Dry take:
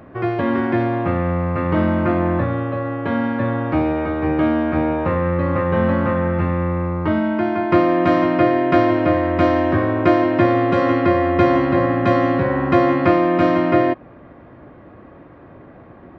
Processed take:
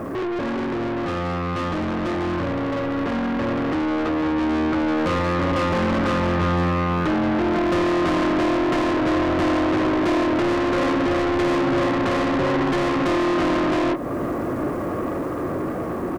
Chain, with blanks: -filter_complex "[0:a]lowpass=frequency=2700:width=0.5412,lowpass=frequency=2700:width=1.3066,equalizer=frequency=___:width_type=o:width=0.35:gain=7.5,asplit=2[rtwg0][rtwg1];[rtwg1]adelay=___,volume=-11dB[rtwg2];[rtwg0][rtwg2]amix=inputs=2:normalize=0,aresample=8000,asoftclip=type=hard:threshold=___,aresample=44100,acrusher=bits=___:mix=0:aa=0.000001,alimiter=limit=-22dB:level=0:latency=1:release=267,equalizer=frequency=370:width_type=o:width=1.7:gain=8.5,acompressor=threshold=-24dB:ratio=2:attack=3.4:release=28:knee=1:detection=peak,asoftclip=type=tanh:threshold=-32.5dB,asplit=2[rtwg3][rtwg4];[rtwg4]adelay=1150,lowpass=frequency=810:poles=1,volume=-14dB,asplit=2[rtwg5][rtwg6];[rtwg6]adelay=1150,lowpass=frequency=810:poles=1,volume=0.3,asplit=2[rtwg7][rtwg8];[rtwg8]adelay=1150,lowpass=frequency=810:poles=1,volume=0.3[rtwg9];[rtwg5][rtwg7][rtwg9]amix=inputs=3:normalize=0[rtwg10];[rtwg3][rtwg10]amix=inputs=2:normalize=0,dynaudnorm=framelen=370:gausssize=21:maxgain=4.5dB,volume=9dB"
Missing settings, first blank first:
1200, 22, -13dB, 9